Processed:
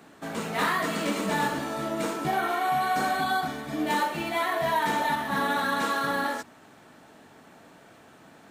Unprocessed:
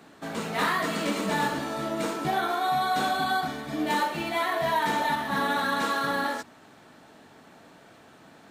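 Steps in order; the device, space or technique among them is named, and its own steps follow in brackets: spectral repair 2.32–3.19, 1700–4100 Hz before; exciter from parts (in parallel at -10 dB: HPF 3800 Hz 24 dB/oct + soft clip -39 dBFS, distortion -13 dB)

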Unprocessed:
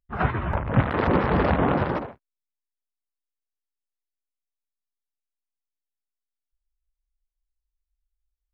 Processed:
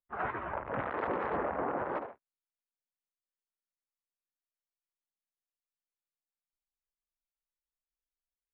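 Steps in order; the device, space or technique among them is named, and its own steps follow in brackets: DJ mixer with the lows and highs turned down (three-band isolator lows -18 dB, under 330 Hz, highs -17 dB, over 2400 Hz; limiter -19 dBFS, peak gain reduction 9 dB); 1.36–1.91 LPF 2000 Hz 12 dB/oct; gain -5 dB

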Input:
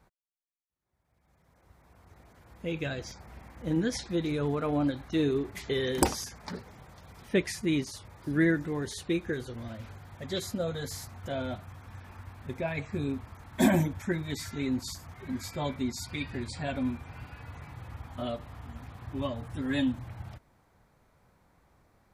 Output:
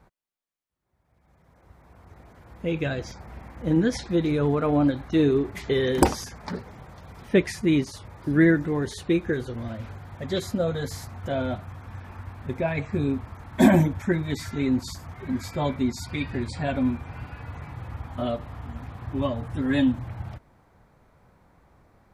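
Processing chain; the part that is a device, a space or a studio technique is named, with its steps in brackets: behind a face mask (high shelf 2900 Hz -8 dB); gain +7 dB

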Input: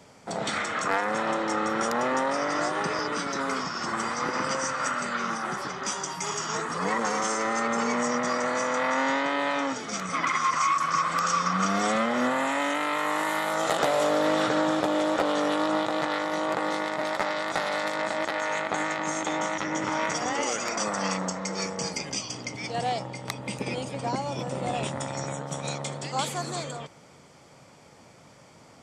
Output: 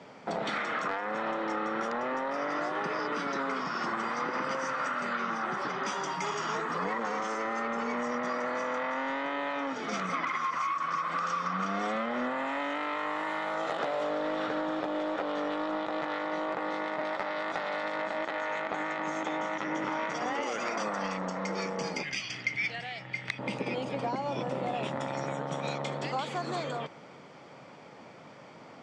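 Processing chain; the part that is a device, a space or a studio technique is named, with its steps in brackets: AM radio (BPF 170–3300 Hz; compressor 5:1, threshold -33 dBFS, peak gain reduction 12 dB; soft clip -22.5 dBFS, distortion -27 dB); 22.03–23.39 graphic EQ 250/500/1000/2000/8000 Hz -10/-10/-12/+10/-3 dB; gain +4 dB

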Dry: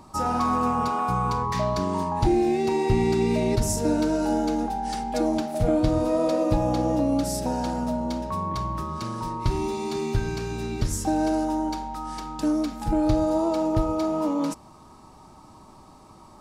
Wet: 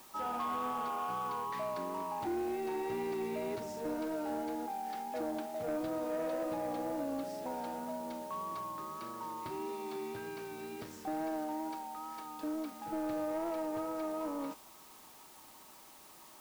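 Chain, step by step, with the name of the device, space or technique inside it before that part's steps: tape answering machine (BPF 330–2800 Hz; soft clip -21 dBFS, distortion -17 dB; wow and flutter 29 cents; white noise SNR 19 dB); gain -9 dB

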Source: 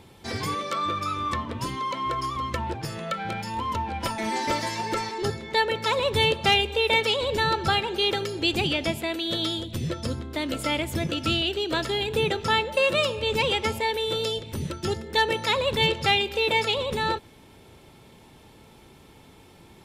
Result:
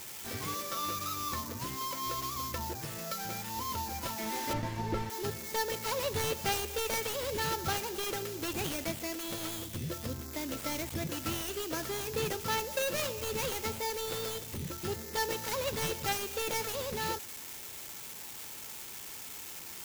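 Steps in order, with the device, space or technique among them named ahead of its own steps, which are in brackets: budget class-D amplifier (switching dead time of 0.17 ms; switching spikes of -18 dBFS); 4.53–5.1 RIAA curve playback; gain -8.5 dB

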